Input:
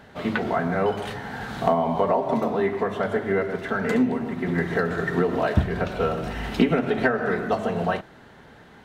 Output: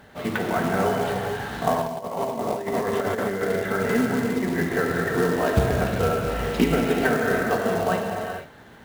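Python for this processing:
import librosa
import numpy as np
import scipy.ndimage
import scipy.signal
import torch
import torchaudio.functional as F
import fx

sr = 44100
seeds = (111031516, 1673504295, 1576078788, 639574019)

y = fx.rev_gated(x, sr, seeds[0], gate_ms=490, shape='flat', drr_db=0.0)
y = fx.over_compress(y, sr, threshold_db=-23.0, ratio=-0.5, at=(1.81, 3.45), fade=0.02)
y = fx.quant_float(y, sr, bits=2)
y = y * 10.0 ** (-1.5 / 20.0)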